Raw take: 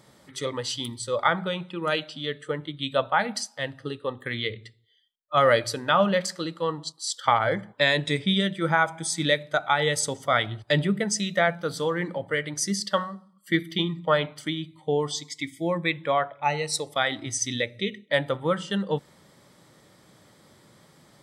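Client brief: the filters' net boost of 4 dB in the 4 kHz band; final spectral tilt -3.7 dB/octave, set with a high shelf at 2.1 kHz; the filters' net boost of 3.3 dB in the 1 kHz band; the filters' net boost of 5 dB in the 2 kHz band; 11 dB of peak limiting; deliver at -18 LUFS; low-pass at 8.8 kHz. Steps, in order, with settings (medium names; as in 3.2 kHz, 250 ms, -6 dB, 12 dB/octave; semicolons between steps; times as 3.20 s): low-pass 8.8 kHz; peaking EQ 1 kHz +3.5 dB; peaking EQ 2 kHz +6.5 dB; treble shelf 2.1 kHz -6.5 dB; peaking EQ 4 kHz +8.5 dB; trim +9 dB; peak limiter -4.5 dBFS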